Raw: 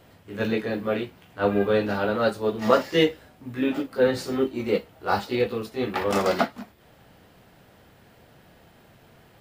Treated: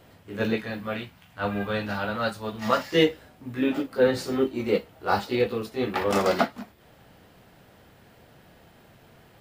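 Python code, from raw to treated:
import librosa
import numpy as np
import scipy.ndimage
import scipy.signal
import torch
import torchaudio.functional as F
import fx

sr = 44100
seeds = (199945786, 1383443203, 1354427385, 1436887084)

y = fx.peak_eq(x, sr, hz=390.0, db=-12.5, octaves=1.1, at=(0.56, 2.92))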